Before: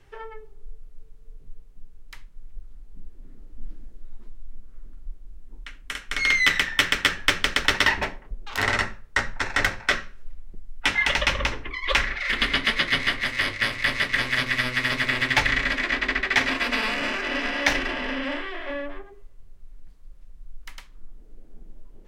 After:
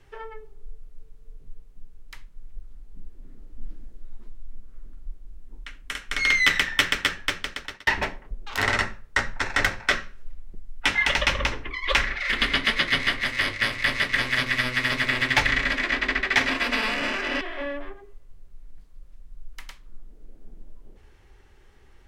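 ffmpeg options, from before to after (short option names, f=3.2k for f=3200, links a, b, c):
-filter_complex "[0:a]asplit=3[a][b][c];[a]atrim=end=7.87,asetpts=PTS-STARTPTS,afade=t=out:st=6.75:d=1.12[d];[b]atrim=start=7.87:end=17.412,asetpts=PTS-STARTPTS,afade=t=in:d=0.004:c=hsin[e];[c]atrim=start=18.498[f];[d][e]concat=n=2:v=0:a=1[g];[g][f]acrossfade=d=0.004:c1=hsin:c2=hsin"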